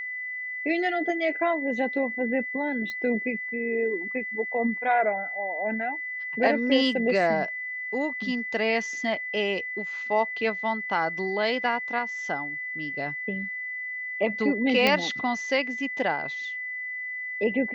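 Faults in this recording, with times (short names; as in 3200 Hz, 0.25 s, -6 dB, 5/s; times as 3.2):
tone 2000 Hz -31 dBFS
2.9 pop -21 dBFS
14.87 pop -8 dBFS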